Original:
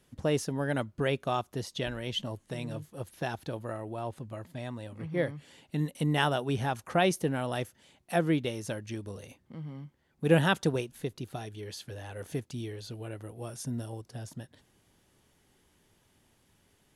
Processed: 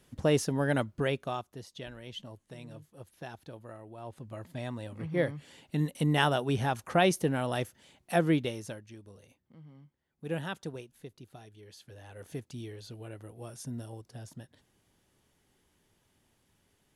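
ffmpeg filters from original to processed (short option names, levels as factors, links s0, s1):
-af "volume=10.6,afade=t=out:st=0.73:d=0.79:silence=0.251189,afade=t=in:st=3.97:d=0.61:silence=0.298538,afade=t=out:st=8.35:d=0.52:silence=0.237137,afade=t=in:st=11.69:d=0.82:silence=0.421697"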